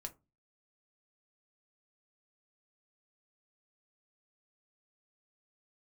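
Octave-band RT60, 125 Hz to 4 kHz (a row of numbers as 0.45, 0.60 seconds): 0.45, 0.40, 0.25, 0.25, 0.15, 0.10 seconds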